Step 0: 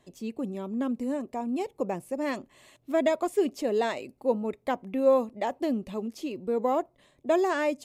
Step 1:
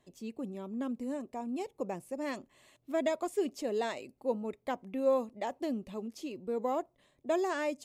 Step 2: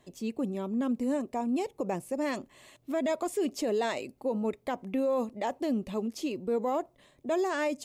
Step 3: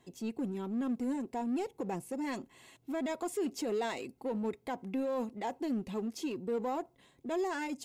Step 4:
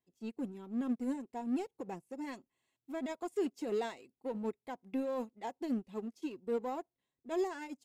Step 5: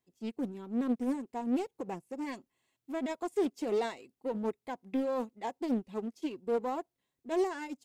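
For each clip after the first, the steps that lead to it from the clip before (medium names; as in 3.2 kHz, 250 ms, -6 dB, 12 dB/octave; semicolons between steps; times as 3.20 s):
dynamic bell 6.7 kHz, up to +4 dB, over -53 dBFS, Q 0.78; trim -6.5 dB
peak limiter -29.5 dBFS, peak gain reduction 10.5 dB; trim +7.5 dB
comb of notches 600 Hz; in parallel at -4 dB: hard clipper -37 dBFS, distortion -6 dB; on the sum: trim -5.5 dB
upward expansion 2.5:1, over -48 dBFS; trim +1.5 dB
loudspeaker Doppler distortion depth 0.31 ms; trim +4 dB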